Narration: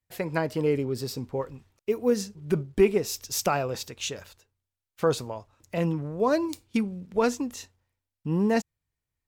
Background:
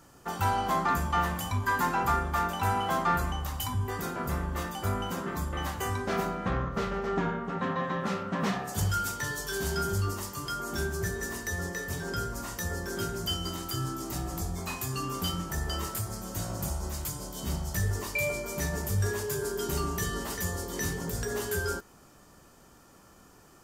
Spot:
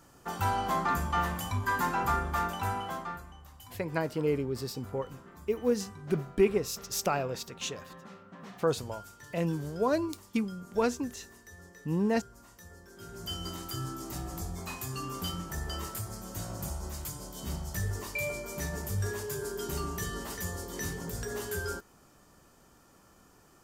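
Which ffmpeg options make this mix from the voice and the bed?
-filter_complex "[0:a]adelay=3600,volume=-4dB[a];[1:a]volume=12dB,afade=t=out:st=2.43:d=0.8:silence=0.158489,afade=t=in:st=12.98:d=0.45:silence=0.199526[b];[a][b]amix=inputs=2:normalize=0"

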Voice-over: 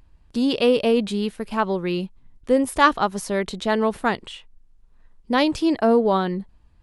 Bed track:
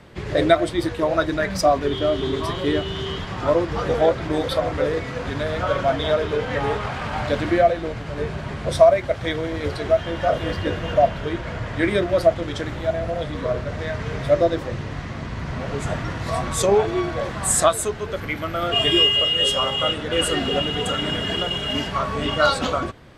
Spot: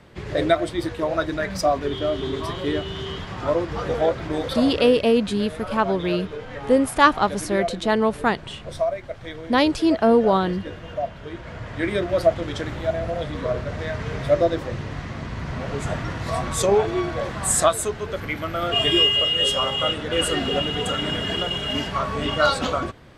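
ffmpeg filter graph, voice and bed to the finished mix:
-filter_complex "[0:a]adelay=4200,volume=1dB[a];[1:a]volume=6.5dB,afade=t=out:st=4.52:d=0.5:silence=0.421697,afade=t=in:st=11.17:d=1.19:silence=0.334965[b];[a][b]amix=inputs=2:normalize=0"

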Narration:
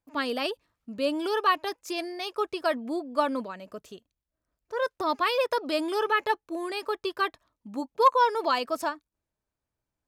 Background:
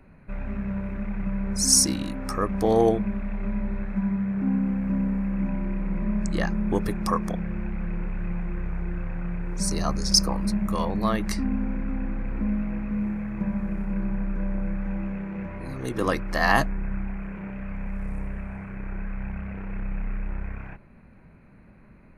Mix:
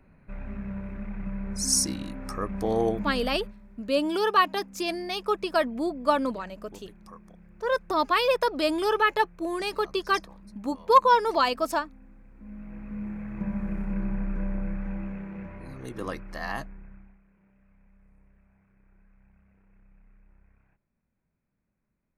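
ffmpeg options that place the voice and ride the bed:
-filter_complex "[0:a]adelay=2900,volume=2.5dB[a];[1:a]volume=15.5dB,afade=t=out:st=3.24:d=0.31:silence=0.133352,afade=t=in:st=12.38:d=1.33:silence=0.0891251,afade=t=out:st=14.38:d=2.83:silence=0.0473151[b];[a][b]amix=inputs=2:normalize=0"

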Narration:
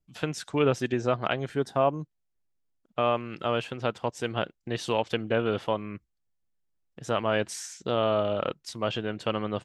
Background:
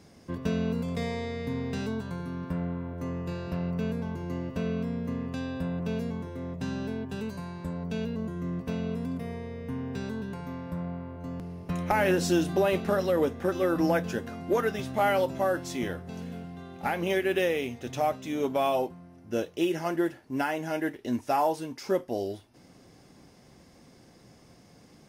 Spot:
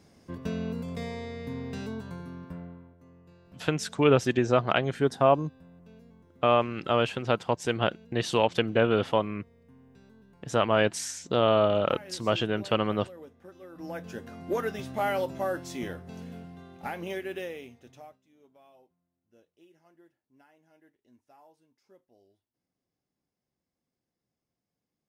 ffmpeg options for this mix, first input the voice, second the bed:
-filter_complex "[0:a]adelay=3450,volume=3dB[a];[1:a]volume=14dB,afade=t=out:st=2.13:d=0.85:silence=0.133352,afade=t=in:st=13.73:d=0.75:silence=0.125893,afade=t=out:st=16.38:d=1.83:silence=0.0354813[b];[a][b]amix=inputs=2:normalize=0"

